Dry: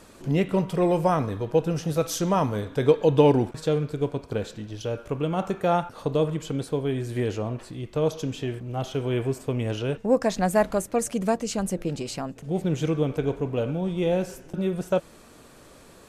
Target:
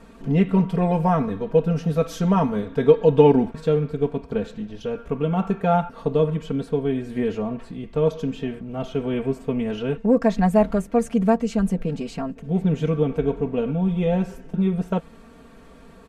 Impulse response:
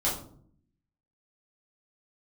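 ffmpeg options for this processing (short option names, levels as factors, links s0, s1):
-af "bass=f=250:g=6,treble=f=4000:g=-12,aecho=1:1:4.4:0.84,volume=0.891"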